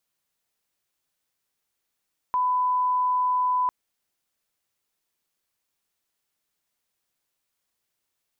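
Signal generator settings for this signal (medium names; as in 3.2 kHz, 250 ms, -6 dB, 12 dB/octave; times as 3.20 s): line-up tone -20 dBFS 1.35 s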